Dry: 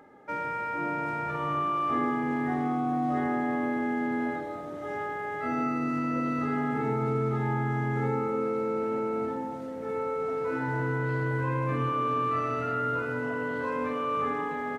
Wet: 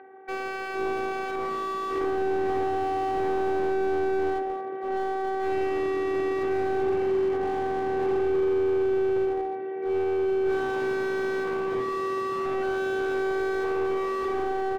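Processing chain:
phases set to zero 383 Hz
in parallel at −10 dB: wrap-around overflow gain 23 dB
on the sum: loudspeaker in its box 230–2,400 Hz, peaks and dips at 330 Hz −4 dB, 640 Hz −4 dB, 1,200 Hz −9 dB
slew-rate limiting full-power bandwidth 13 Hz
level +8.5 dB

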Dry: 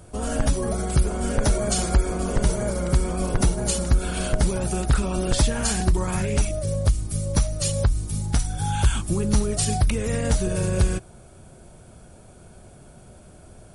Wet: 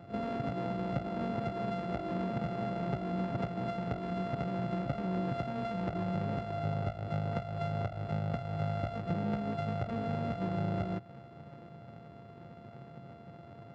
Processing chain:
samples sorted by size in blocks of 64 samples
high-pass filter 120 Hz 24 dB per octave
bass and treble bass +3 dB, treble 0 dB
downward compressor 5 to 1, threshold −30 dBFS, peak gain reduction 13 dB
head-to-tape spacing loss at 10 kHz 40 dB
on a send: backwards echo 38 ms −10.5 dB

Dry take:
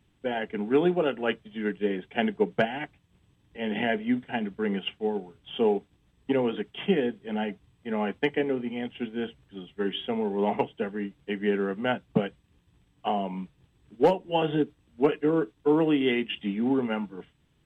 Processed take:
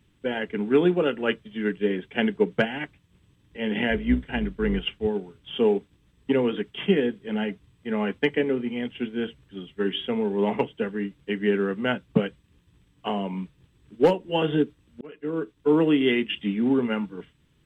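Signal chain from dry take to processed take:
0:03.90–0:05.07: sub-octave generator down 2 octaves, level −5 dB
parametric band 740 Hz −8.5 dB 0.45 octaves
0:15.01–0:15.76: fade in
level +3.5 dB

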